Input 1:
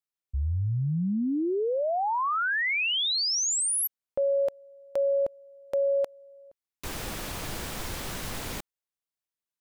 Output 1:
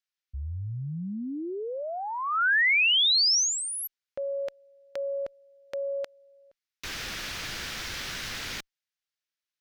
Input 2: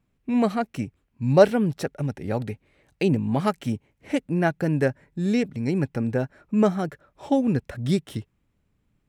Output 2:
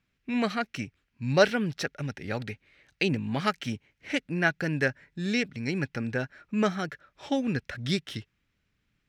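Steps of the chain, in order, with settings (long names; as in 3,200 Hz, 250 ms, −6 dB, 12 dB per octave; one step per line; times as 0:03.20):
harmonic generator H 2 −42 dB, 4 −43 dB, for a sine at −4.5 dBFS
flat-topped bell 2,900 Hz +11.5 dB 2.5 octaves
level −6.5 dB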